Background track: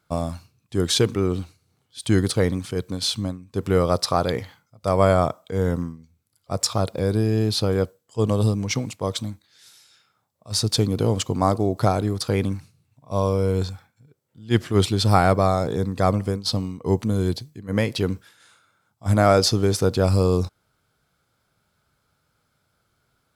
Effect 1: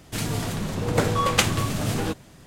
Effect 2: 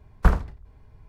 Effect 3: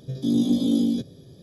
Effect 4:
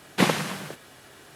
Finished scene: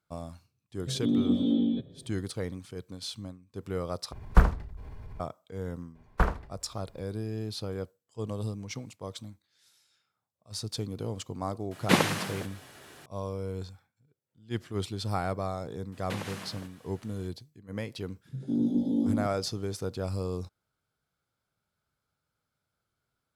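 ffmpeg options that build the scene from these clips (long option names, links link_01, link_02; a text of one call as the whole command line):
ffmpeg -i bed.wav -i cue0.wav -i cue1.wav -i cue2.wav -i cue3.wav -filter_complex "[3:a]asplit=2[link_01][link_02];[2:a]asplit=2[link_03][link_04];[4:a]asplit=2[link_05][link_06];[0:a]volume=-14dB[link_07];[link_01]aresample=8000,aresample=44100[link_08];[link_03]acompressor=mode=upward:threshold=-33dB:ratio=4:attack=0.21:release=129:knee=2.83:detection=peak[link_09];[link_04]bass=frequency=250:gain=-7,treble=frequency=4000:gain=-4[link_10];[link_06]acompressor=threshold=-26dB:ratio=3:attack=8.4:release=138:knee=1:detection=peak[link_11];[link_02]afwtdn=0.0316[link_12];[link_07]asplit=2[link_13][link_14];[link_13]atrim=end=4.124[link_15];[link_09]atrim=end=1.08,asetpts=PTS-STARTPTS,volume=-1dB[link_16];[link_14]atrim=start=5.196[link_17];[link_08]atrim=end=1.42,asetpts=PTS-STARTPTS,volume=-4.5dB,afade=type=in:duration=0.004:curve=hsin,afade=type=out:start_time=1.416:duration=0.004:curve=hsin,adelay=790[link_18];[link_10]atrim=end=1.08,asetpts=PTS-STARTPTS,volume=-1.5dB,afade=type=in:duration=0.004:curve=hsin,afade=type=out:start_time=1.076:duration=0.004:curve=hsin,adelay=5950[link_19];[link_05]atrim=end=1.35,asetpts=PTS-STARTPTS,volume=-1.5dB,afade=type=in:duration=0.004:curve=hsin,afade=type=out:start_time=1.346:duration=0.004:curve=hsin,adelay=11710[link_20];[link_11]atrim=end=1.35,asetpts=PTS-STARTPTS,volume=-10dB,afade=type=in:duration=0.004:curve=hsin,afade=type=out:start_time=1.346:duration=0.004:curve=hsin,adelay=15920[link_21];[link_12]atrim=end=1.42,asetpts=PTS-STARTPTS,volume=-6dB,afade=type=in:duration=0.004:curve=hsin,afade=type=out:start_time=1.416:duration=0.004:curve=hsin,adelay=18250[link_22];[link_15][link_16]acrossfade=duration=0.004:curve1=hsin:curve2=hsin[link_23];[link_23][link_17]acrossfade=duration=0.004:curve1=hsin:curve2=hsin[link_24];[link_24][link_18][link_19][link_20][link_21][link_22]amix=inputs=6:normalize=0" out.wav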